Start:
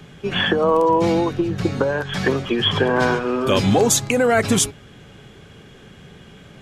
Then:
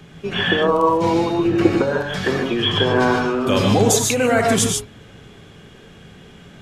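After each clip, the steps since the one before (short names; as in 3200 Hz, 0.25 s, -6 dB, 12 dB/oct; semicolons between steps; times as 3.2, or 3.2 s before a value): spectral gain 1.44–1.7, 200–3100 Hz +8 dB; non-linear reverb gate 0.17 s rising, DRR 1.5 dB; gain -1.5 dB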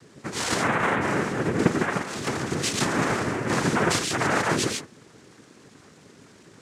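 noise vocoder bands 3; gain -7 dB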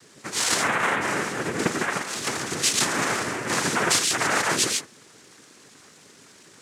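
tilt +2.5 dB/oct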